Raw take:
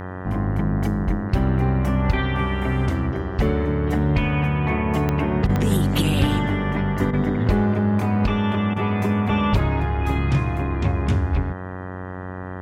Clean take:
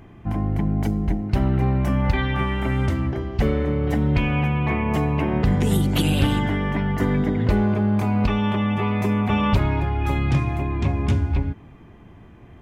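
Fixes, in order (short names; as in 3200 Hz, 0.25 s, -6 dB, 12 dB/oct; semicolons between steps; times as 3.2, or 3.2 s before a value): de-click; de-hum 92.3 Hz, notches 21; interpolate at 5.47/7.11/8.74, 21 ms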